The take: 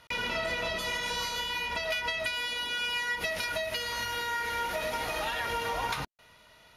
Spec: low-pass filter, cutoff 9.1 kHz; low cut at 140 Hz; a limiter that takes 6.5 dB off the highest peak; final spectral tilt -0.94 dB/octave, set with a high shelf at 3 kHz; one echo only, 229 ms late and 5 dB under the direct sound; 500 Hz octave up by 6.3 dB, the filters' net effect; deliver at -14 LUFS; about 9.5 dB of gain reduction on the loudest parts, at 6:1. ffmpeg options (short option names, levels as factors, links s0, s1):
-af "highpass=140,lowpass=9100,equalizer=f=500:t=o:g=8,highshelf=f=3000:g=4.5,acompressor=threshold=0.0178:ratio=6,alimiter=level_in=1.88:limit=0.0631:level=0:latency=1,volume=0.531,aecho=1:1:229:0.562,volume=13.3"